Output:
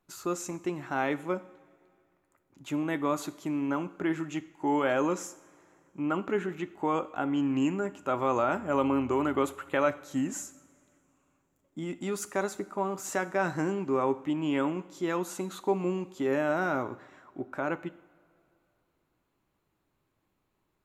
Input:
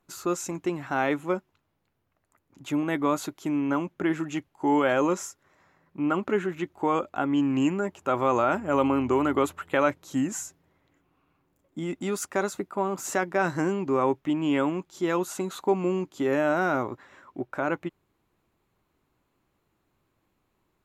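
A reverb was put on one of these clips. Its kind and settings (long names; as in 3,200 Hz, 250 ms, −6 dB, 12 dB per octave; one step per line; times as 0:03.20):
coupled-rooms reverb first 0.6 s, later 2.6 s, from −16 dB, DRR 13 dB
level −4 dB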